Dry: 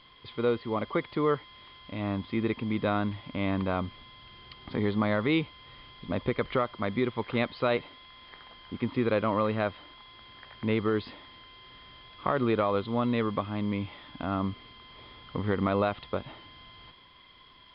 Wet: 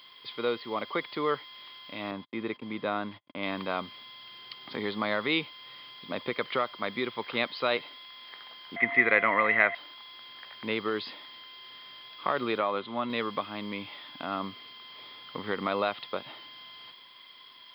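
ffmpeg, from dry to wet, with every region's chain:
-filter_complex "[0:a]asettb=1/sr,asplit=3[a][b][c];[a]atrim=end=2.114[d];[b]atrim=start=2.11:end=3.43,asetpts=PTS-STARTPTS,afade=t=in:d=0.004:c=qsin,afade=t=out:st=1.316:d=0.004:c=qsin,agate=range=-41dB:threshold=-40dB:ratio=16:release=100:detection=peak,highshelf=f=2.6k:g=-10.5[e];[c]atrim=start=3.426[f];[d][e]acrossfade=d=0.004:c1=hsin:c2=qsin[g];[g][f]acrossfade=d=0.004:c1=qsin:c2=hsin,asettb=1/sr,asplit=3[h][i][j];[h]atrim=end=8.764[k];[i]atrim=start=8.76:end=9.75,asetpts=PTS-STARTPTS,afade=t=in:d=0.004:c=qsin,afade=t=out:st=0.986:d=0.004:c=qsin,aeval=exprs='val(0)+0.0141*sin(2*PI*690*n/s)':c=same,lowpass=f=2k:t=q:w=14[l];[j]atrim=start=9.746[m];[k][l]acrossfade=d=0.004:c1=hsin:c2=qsin[n];[n][m]acrossfade=d=0.004:c1=qsin:c2=hsin,asettb=1/sr,asplit=3[o][p][q];[o]atrim=end=12.584[r];[p]atrim=start=12.58:end=13.1,asetpts=PTS-STARTPTS,afade=t=in:d=0.004:c=qsin,afade=t=out:st=0.516:d=0.004:c=qsin,highpass=100,lowpass=3k,bandreject=f=470:w=10[s];[q]atrim=start=13.096[t];[r][s]acrossfade=d=0.004:c1=hsin:c2=qsin[u];[u][t]acrossfade=d=0.004:c1=qsin:c2=hsin,highpass=f=110:w=0.5412,highpass=f=110:w=1.3066,aemphasis=mode=production:type=riaa"

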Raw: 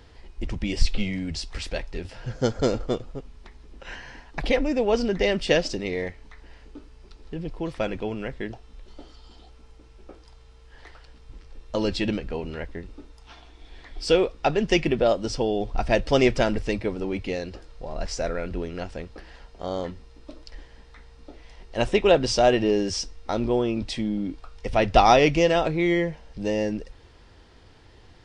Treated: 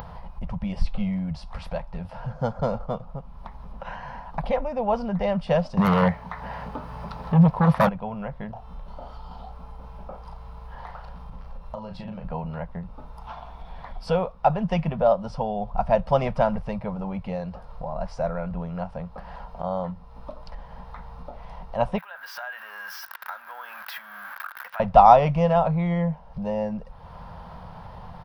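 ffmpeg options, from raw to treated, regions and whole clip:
-filter_complex "[0:a]asettb=1/sr,asplit=3[a][b][c];[a]atrim=end=5.774[d];[b]atrim=start=5.77:end=7.89,asetpts=PTS-STARTPTS,afade=t=in:d=0.004:c=qsin,afade=t=out:st=2.116:d=0.004:c=qsin,aeval=exprs='0.2*sin(PI/2*3.98*val(0)/0.2)':c=same,highpass=79,equalizer=f=1.8k:t=o:w=0.42:g=4.5[e];[c]atrim=start=7.886[f];[d][e]acrossfade=d=0.004:c1=hsin:c2=qsin[g];[g][f]acrossfade=d=0.004:c1=qsin:c2=hsin,asettb=1/sr,asplit=3[h][i][j];[h]atrim=end=8.514[k];[i]atrim=start=8.51:end=12.25,asetpts=PTS-STARTPTS,afade=t=in:d=0.004:c=qsin,afade=t=out:st=3.736:d=0.004:c=qsin,acompressor=threshold=-37dB:ratio=6:attack=3.2:release=140:knee=1:detection=peak,asplit=2[l][m];[m]adelay=36,volume=-6dB[n];[l][n]amix=inputs=2:normalize=0,atrim=end_sample=164934[o];[j]atrim=start=12.246[p];[k][o]acrossfade=d=0.004:c1=hsin:c2=qsin[q];[q][p]acrossfade=d=0.004:c1=qsin:c2=hsin,asettb=1/sr,asplit=3[r][s][t];[r]atrim=end=21.984[u];[s]atrim=start=21.98:end=24.8,asetpts=PTS-STARTPTS,afade=t=in:d=0.004:c=qsin,afade=t=out:st=2.816:d=0.004:c=qsin,aeval=exprs='val(0)+0.5*0.0251*sgn(val(0))':c=same,acompressor=threshold=-32dB:ratio=10:attack=3.2:release=140:knee=1:detection=peak,highpass=f=1.6k:t=q:w=9.9[v];[t]atrim=start=24.796[w];[u][v]acrossfade=d=0.004:c1=hsin:c2=qsin[x];[x][w]acrossfade=d=0.004:c1=qsin:c2=hsin,firequalizer=gain_entry='entry(110,0);entry(170,12);entry(320,-19);entry(550,5);entry(960,11);entry(1800,-7);entry(4800,-12);entry(7500,-21);entry(12000,5)':delay=0.05:min_phase=1,acompressor=mode=upward:threshold=-24dB:ratio=2.5,volume=-3.5dB"

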